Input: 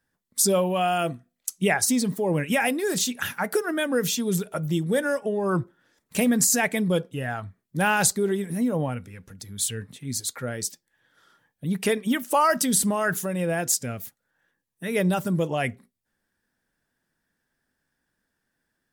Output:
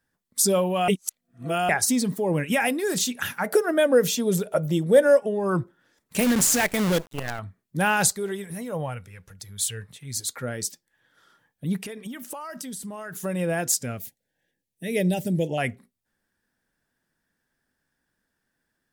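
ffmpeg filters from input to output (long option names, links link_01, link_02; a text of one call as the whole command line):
ffmpeg -i in.wav -filter_complex "[0:a]asettb=1/sr,asplit=3[link_01][link_02][link_03];[link_01]atrim=end=3.464[link_04];[link_02]atrim=start=3.46:end=5.2,asetpts=PTS-STARTPTS,afade=type=in:duration=0.004:curve=qsin,afade=type=out:start_time=1.736:duration=0.004:curve=qsin,equalizer=frequency=570:width=2:gain=10.5[link_05];[link_03]atrim=start=5.196[link_06];[link_04][link_05]acrossfade=duration=0.004:curve1=hsin:curve2=qsin[link_07];[link_07][link_06]acrossfade=duration=0.004:curve1=qsin:curve2=hsin,asettb=1/sr,asplit=3[link_08][link_09][link_10];[link_08]atrim=end=6.194[link_11];[link_09]atrim=start=6.19:end=7.39,asetpts=PTS-STARTPTS,afade=type=in:duration=0.004:curve=qsin,afade=type=out:start_time=1.196:duration=0.004:curve=qsin,acrusher=bits=5:dc=4:mix=0:aa=0.000001[link_12];[link_10]atrim=start=7.386[link_13];[link_11][link_12]acrossfade=duration=0.004:curve1=hsin:curve2=qsin[link_14];[link_14][link_13]acrossfade=duration=0.004:curve1=qsin:curve2=hsin,asettb=1/sr,asplit=3[link_15][link_16][link_17];[link_15]atrim=end=8.094[link_18];[link_16]atrim=start=8.09:end=10.17,asetpts=PTS-STARTPTS,afade=type=in:duration=0.004:curve=qsin,afade=type=out:start_time=2.076:duration=0.004:curve=qsin,equalizer=frequency=260:width=1.5:gain=-13[link_19];[link_17]atrim=start=10.166[link_20];[link_18][link_19]acrossfade=duration=0.004:curve1=hsin:curve2=qsin[link_21];[link_21][link_20]acrossfade=duration=0.004:curve1=qsin:curve2=hsin,asettb=1/sr,asplit=3[link_22][link_23][link_24];[link_22]atrim=end=11.794[link_25];[link_23]atrim=start=11.79:end=13.24,asetpts=PTS-STARTPTS,afade=type=in:duration=0.004:curve=qsin,afade=type=out:start_time=1.446:duration=0.004:curve=qsin,acompressor=threshold=-32dB:ratio=20:attack=3.2:release=140:knee=1:detection=peak[link_26];[link_24]atrim=start=13.236[link_27];[link_25][link_26]acrossfade=duration=0.004:curve1=hsin:curve2=qsin[link_28];[link_28][link_27]acrossfade=duration=0.004:curve1=qsin:curve2=hsin,asettb=1/sr,asplit=3[link_29][link_30][link_31];[link_29]atrim=end=13.994[link_32];[link_30]atrim=start=13.99:end=15.58,asetpts=PTS-STARTPTS,afade=type=in:duration=0.004:curve=qsin,afade=type=out:start_time=1.586:duration=0.004:curve=qsin,asuperstop=centerf=1200:order=4:qfactor=1[link_33];[link_31]atrim=start=15.576[link_34];[link_32][link_33]acrossfade=duration=0.004:curve1=hsin:curve2=qsin[link_35];[link_35][link_34]acrossfade=duration=0.004:curve1=qsin:curve2=hsin,asplit=3[link_36][link_37][link_38];[link_36]atrim=end=0.882[link_39];[link_37]atrim=start=0.878:end=1.692,asetpts=PTS-STARTPTS,areverse[link_40];[link_38]atrim=start=1.688[link_41];[link_39][link_40]acrossfade=duration=0.004:curve1=hsin:curve2=hsin[link_42];[link_42][link_41]acrossfade=duration=0.004:curve1=hsin:curve2=hsin" out.wav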